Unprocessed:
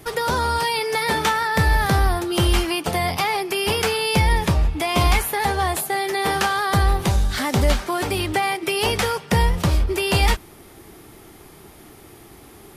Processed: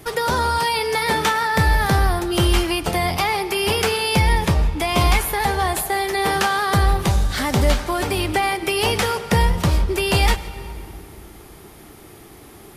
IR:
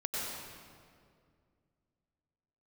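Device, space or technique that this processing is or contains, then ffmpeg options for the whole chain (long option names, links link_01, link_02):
compressed reverb return: -filter_complex "[0:a]asplit=2[link_01][link_02];[1:a]atrim=start_sample=2205[link_03];[link_02][link_03]afir=irnorm=-1:irlink=0,acompressor=threshold=-14dB:ratio=6,volume=-13.5dB[link_04];[link_01][link_04]amix=inputs=2:normalize=0"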